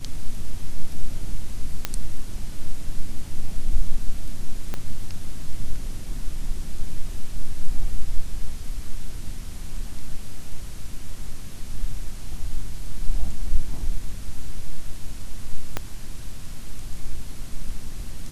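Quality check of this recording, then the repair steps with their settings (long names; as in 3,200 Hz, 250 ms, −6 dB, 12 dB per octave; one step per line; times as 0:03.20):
0:01.85: click −8 dBFS
0:04.74: click −14 dBFS
0:15.77: click −10 dBFS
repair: click removal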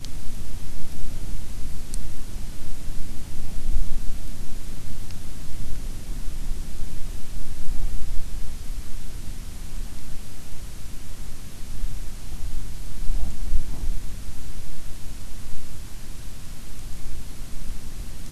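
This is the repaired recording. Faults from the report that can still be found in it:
0:04.74: click
0:15.77: click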